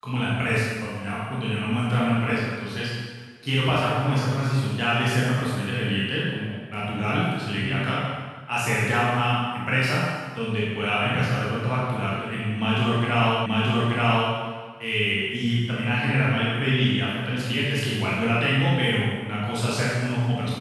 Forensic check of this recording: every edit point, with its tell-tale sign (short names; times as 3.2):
13.46 repeat of the last 0.88 s